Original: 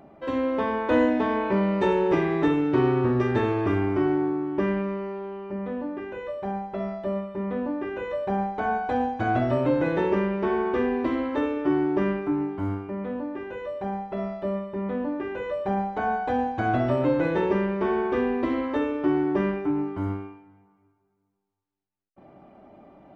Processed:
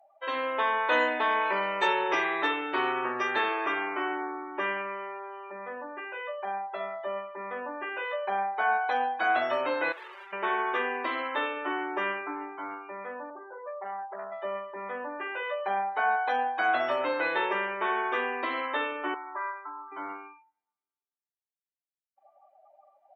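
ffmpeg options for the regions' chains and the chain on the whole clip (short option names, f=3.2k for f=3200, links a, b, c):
-filter_complex "[0:a]asettb=1/sr,asplit=3[a][b][c];[a]atrim=end=9.924[d];[b]atrim=start=9.92:end=10.33,asetpts=PTS-STARTPTS,afade=t=in:d=0.004:c=qsin,afade=t=out:st=0.406:d=0.004:c=qsin,bandreject=f=1.2k:w=5.3,aeval=exprs='(tanh(112*val(0)+0.55)-tanh(0.55))/112':c=same[e];[c]atrim=start=10.326[f];[d][e]acrossfade=d=0.004:c1=hsin:c2=qsin[g];[g][f]acrossfade=d=0.004:c1=qsin:c2=hsin,asettb=1/sr,asplit=3[h][i][j];[h]atrim=end=13.304[k];[i]atrim=start=13.3:end=14.32,asetpts=PTS-STARTPTS,afade=t=in:d=0.004:c=qsin,afade=t=out:st=1.016:d=0.004:c=qsin,lowpass=f=1.2k:w=0.5412,lowpass=f=1.2k:w=1.3066,aeval=exprs='(tanh(25.1*val(0)+0.3)-tanh(0.3))/25.1':c=same[l];[j]atrim=start=14.316[m];[k][l]acrossfade=d=0.004:c1=hsin:c2=qsin[n];[n][m]acrossfade=d=0.004:c1=qsin:c2=hsin,asettb=1/sr,asplit=3[o][p][q];[o]atrim=end=19.144[r];[p]atrim=start=19.14:end=19.92,asetpts=PTS-STARTPTS,afade=t=in:d=0.004:c=qsin,afade=t=out:st=0.776:d=0.004:c=qsin,bandpass=f=1.1k:t=q:w=2.8,aecho=1:1:3.1:0.59,atrim=end_sample=34398[s];[q]atrim=start=19.916[t];[r][s]acrossfade=d=0.004:c1=hsin:c2=qsin[u];[u][t]acrossfade=d=0.004:c1=qsin:c2=hsin,highpass=970,afftdn=nr=28:nf=-49,aemphasis=mode=production:type=cd,volume=5.5dB"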